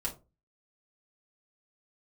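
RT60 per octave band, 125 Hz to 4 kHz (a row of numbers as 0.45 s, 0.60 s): 0.45 s, 0.35 s, 0.30 s, 0.25 s, 0.20 s, 0.15 s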